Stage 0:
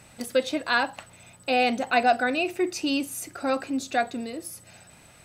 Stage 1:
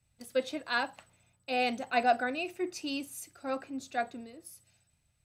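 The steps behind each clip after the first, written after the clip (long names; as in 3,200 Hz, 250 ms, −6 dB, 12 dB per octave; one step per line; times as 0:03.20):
multiband upward and downward expander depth 70%
level −8.5 dB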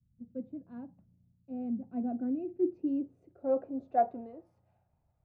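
low-pass filter sweep 200 Hz → 820 Hz, 0:01.83–0:04.31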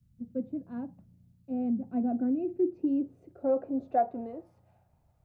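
downward compressor 2 to 1, threshold −34 dBFS, peak gain reduction 7.5 dB
level +7 dB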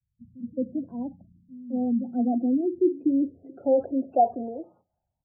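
gate on every frequency bin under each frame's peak −25 dB strong
noise gate with hold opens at −53 dBFS
multiband delay without the direct sound lows, highs 220 ms, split 160 Hz
level +6 dB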